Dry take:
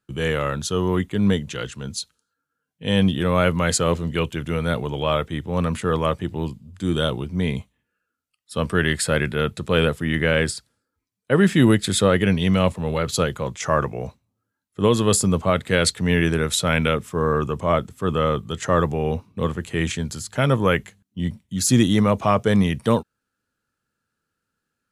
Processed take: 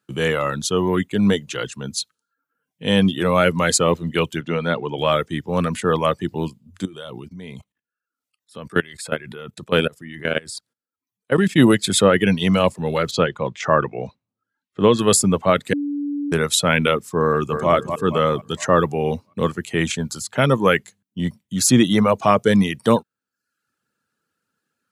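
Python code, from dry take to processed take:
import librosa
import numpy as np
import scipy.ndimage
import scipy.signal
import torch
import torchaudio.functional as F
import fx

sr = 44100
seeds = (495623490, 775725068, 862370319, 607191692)

y = fx.bandpass_edges(x, sr, low_hz=130.0, high_hz=fx.line((4.4, 5000.0), (4.97, 3400.0)), at=(4.4, 4.97), fade=0.02)
y = fx.level_steps(y, sr, step_db=18, at=(6.85, 11.58))
y = fx.lowpass(y, sr, hz=4000.0, slope=12, at=(13.11, 14.99))
y = fx.echo_throw(y, sr, start_s=17.29, length_s=0.43, ms=230, feedback_pct=55, wet_db=-6.5)
y = fx.edit(y, sr, fx.bleep(start_s=15.73, length_s=0.59, hz=288.0, db=-23.5), tone=tone)
y = scipy.signal.sosfilt(scipy.signal.butter(2, 140.0, 'highpass', fs=sr, output='sos'), y)
y = fx.dereverb_blind(y, sr, rt60_s=0.59)
y = y * 10.0 ** (4.0 / 20.0)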